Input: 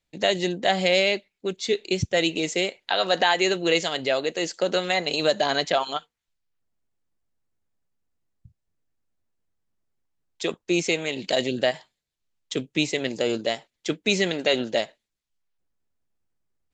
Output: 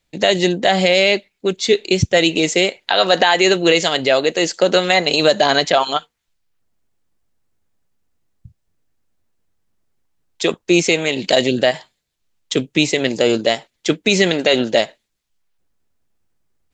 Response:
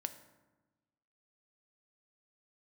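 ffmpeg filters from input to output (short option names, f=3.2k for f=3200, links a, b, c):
-af "alimiter=level_in=10.5dB:limit=-1dB:release=50:level=0:latency=1,volume=-1dB"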